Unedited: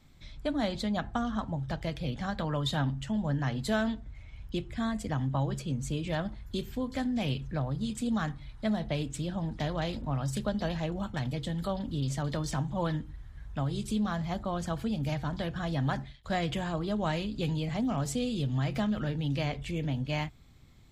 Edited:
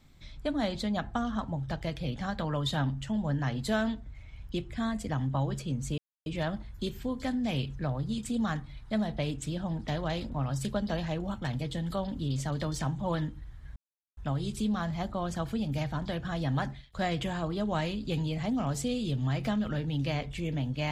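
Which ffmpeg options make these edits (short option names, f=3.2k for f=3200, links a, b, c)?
-filter_complex "[0:a]asplit=3[a][b][c];[a]atrim=end=5.98,asetpts=PTS-STARTPTS,afade=t=out:st=5.976:d=0.004:c=hsin,apad=pad_dur=0.28[d];[b]atrim=start=5.98:end=13.48,asetpts=PTS-STARTPTS,afade=t=in:d=0.004:c=hsin,afade=t=out:st=7.496:d=0.004:c=hsin,apad=pad_dur=0.41[e];[c]atrim=start=13.48,asetpts=PTS-STARTPTS,afade=t=in:d=0.004:c=hsin[f];[d][e][f]concat=n=3:v=0:a=1"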